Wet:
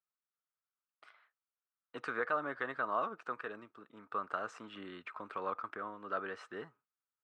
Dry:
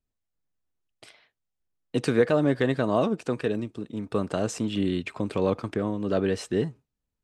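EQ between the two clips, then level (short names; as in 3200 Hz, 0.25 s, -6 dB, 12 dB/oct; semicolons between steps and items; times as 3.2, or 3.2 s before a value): band-pass 1300 Hz, Q 4.6; +3.5 dB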